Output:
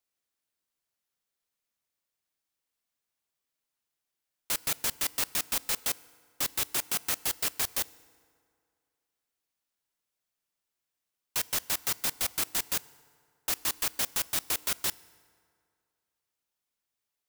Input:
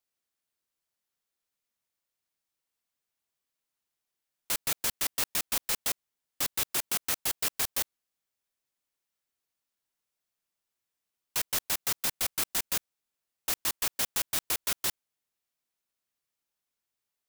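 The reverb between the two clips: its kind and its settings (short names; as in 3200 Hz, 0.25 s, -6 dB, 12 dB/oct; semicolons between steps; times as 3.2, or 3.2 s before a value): FDN reverb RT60 2.2 s, low-frequency decay 0.9×, high-frequency decay 0.6×, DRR 19.5 dB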